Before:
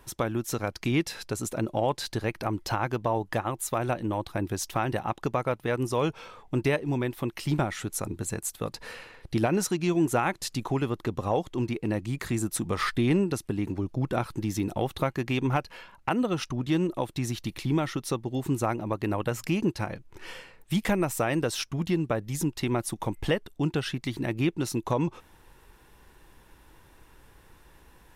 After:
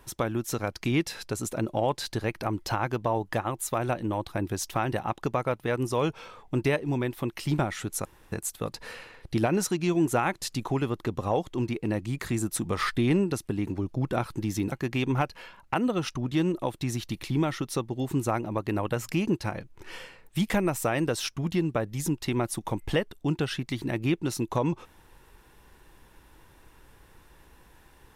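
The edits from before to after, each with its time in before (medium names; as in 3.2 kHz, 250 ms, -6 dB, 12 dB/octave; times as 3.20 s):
8.05–8.32 s: room tone
14.72–15.07 s: delete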